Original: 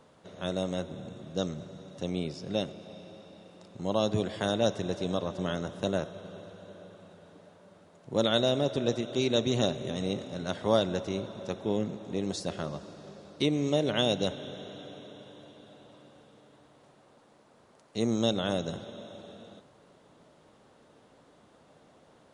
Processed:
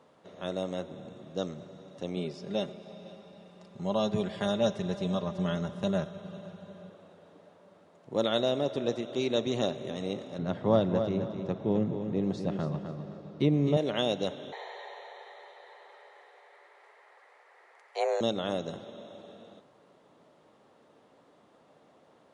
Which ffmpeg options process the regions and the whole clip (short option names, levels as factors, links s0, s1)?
-filter_complex "[0:a]asettb=1/sr,asplit=3[s0][s1][s2];[s0]atrim=end=2.164[s3];[s1]atrim=start=2.16:end=6.9,asetpts=PTS-STARTPTS,afade=t=in:d=0.004:c=qsin,afade=t=out:st=4.736:d=0.004:c=qsin,asubboost=boost=6.5:cutoff=140,aecho=1:1:5:0.6,atrim=end_sample=209034,aecho=1:1:504:0.0891,atrim=end_sample=209034[s4];[s2]atrim=start=6.896[s5];[s3][s4]acrossfade=d=0.004:c1=hsin:c2=qsin[s6];[s6][s5]acrossfade=d=0.004:c1=qsin:c2=hsin,asettb=1/sr,asplit=3[s7][s8][s9];[s7]atrim=end=10.384[s10];[s8]atrim=start=10.38:end=13.77,asetpts=PTS-STARTPTS,afade=t=in:d=0.004:c=qsin,afade=t=out:st=3.386:d=0.004:c=qsin,lowpass=f=2200:p=1,equalizer=f=130:w=0.88:g=12.5,aecho=1:1:258|516|774:0.398|0.111|0.0312,atrim=end_sample=149499[s11];[s9]atrim=start=13.766[s12];[s10][s11]acrossfade=d=0.004:c1=hsin:c2=qsin[s13];[s13][s12]acrossfade=d=0.004:c1=qsin:c2=hsin,asettb=1/sr,asplit=3[s14][s15][s16];[s14]atrim=end=14.524[s17];[s15]atrim=start=14.52:end=18.21,asetpts=PTS-STARTPTS,afade=t=in:d=0.004:c=qsin,afade=t=out:st=3.686:d=0.004:c=qsin,equalizer=f=1700:t=o:w=0.67:g=15,afreqshift=280[s18];[s16]atrim=start=18.206[s19];[s17][s18]acrossfade=d=0.004:c1=hsin:c2=qsin[s20];[s20][s19]acrossfade=d=0.004:c1=qsin:c2=hsin,highpass=f=230:p=1,highshelf=f=3800:g=-8.5,bandreject=f=1500:w=18"